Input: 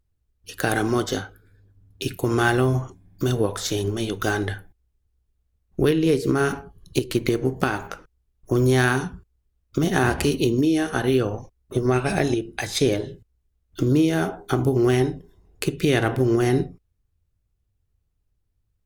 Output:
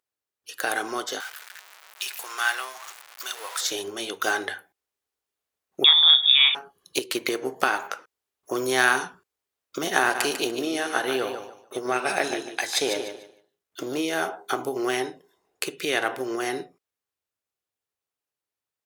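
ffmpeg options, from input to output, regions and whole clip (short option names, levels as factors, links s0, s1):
-filter_complex "[0:a]asettb=1/sr,asplit=3[s0][s1][s2];[s0]atrim=end=1.204[s3];[s1]atrim=start=1.2:end=3.61,asetpts=PTS-STARTPTS,afade=t=in:d=0.004:c=qsin,afade=t=out:st=2.406:d=0.004:c=qsin,aeval=exprs='val(0)+0.5*0.0355*sgn(val(0))':c=same,highpass=1200[s4];[s2]atrim=start=3.606[s5];[s3][s4]acrossfade=d=0.004:c1=hsin:c2=qsin[s6];[s6][s5]acrossfade=d=0.004:c1=qsin:c2=hsin,asettb=1/sr,asplit=3[s7][s8][s9];[s7]atrim=end=5.844[s10];[s8]atrim=start=5.84:end=6.55,asetpts=PTS-STARTPTS,afade=t=in:d=0.004:c=qsin,afade=t=out:st=0.706:d=0.004:c=qsin,highpass=43,lowpass=f=3200:t=q:w=0.5098,lowpass=f=3200:t=q:w=0.6013,lowpass=f=3200:t=q:w=0.9,lowpass=f=3200:t=q:w=2.563,afreqshift=-3800[s11];[s9]atrim=start=6.546[s12];[s10][s11]acrossfade=d=0.004:c1=hsin:c2=qsin[s13];[s13][s12]acrossfade=d=0.004:c1=qsin:c2=hsin,asettb=1/sr,asplit=3[s14][s15][s16];[s14]atrim=end=10.004[s17];[s15]atrim=start=10:end=13.98,asetpts=PTS-STARTPTS,afade=t=in:d=0.004:c=qsin,afade=t=out:st=3.976:d=0.004:c=qsin,aeval=exprs='if(lt(val(0),0),0.708*val(0),val(0))':c=same,aecho=1:1:147|294|441:0.376|0.0902|0.0216,atrim=end_sample=175518[s18];[s16]atrim=start=13.976[s19];[s17][s18]acrossfade=d=0.004:c1=hsin:c2=qsin[s20];[s20][s19]acrossfade=d=0.004:c1=qsin:c2=hsin,highpass=610,dynaudnorm=f=670:g=13:m=3.76,volume=0.891"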